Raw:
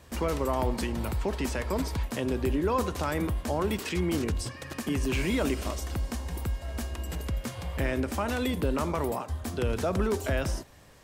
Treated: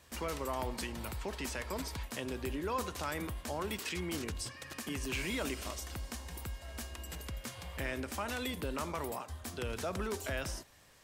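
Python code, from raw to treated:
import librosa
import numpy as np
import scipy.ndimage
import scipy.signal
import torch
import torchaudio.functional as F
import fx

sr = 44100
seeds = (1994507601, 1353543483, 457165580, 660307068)

y = fx.tilt_shelf(x, sr, db=-4.5, hz=970.0)
y = F.gain(torch.from_numpy(y), -7.0).numpy()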